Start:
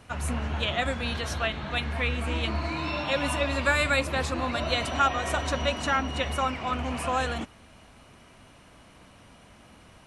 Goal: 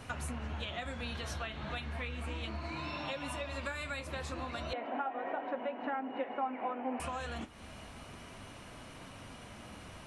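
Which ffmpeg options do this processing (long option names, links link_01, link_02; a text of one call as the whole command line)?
ffmpeg -i in.wav -filter_complex "[0:a]flanger=delay=7.5:depth=6.8:regen=-57:speed=0.33:shape=sinusoidal,acompressor=threshold=-44dB:ratio=10,asettb=1/sr,asplit=3[link_01][link_02][link_03];[link_01]atrim=end=4.734[link_04];[link_02]atrim=start=4.73:end=7,asetpts=PTS-STARTPTS,afade=type=in:duration=0.004:curve=qsin,afade=type=out:start_time=2.266:duration=0.004:curve=qsin,highpass=frequency=250:width=0.5412,highpass=frequency=250:width=1.3066,equalizer=frequency=260:width_type=q:width=4:gain=8,equalizer=frequency=500:width_type=q:width=4:gain=7,equalizer=frequency=810:width_type=q:width=4:gain=10,equalizer=frequency=1200:width_type=q:width=4:gain=-5,lowpass=frequency=2200:width=0.5412,lowpass=frequency=2200:width=1.3066[link_05];[link_03]atrim=start=6.996[link_06];[link_04][link_05]acrossfade=duration=0.004:curve1=hsin:curve2=qsin[link_07];[link_07][link_06]acrossfade=duration=0.004:curve1=qsin:curve2=hsin,volume=7.5dB" out.wav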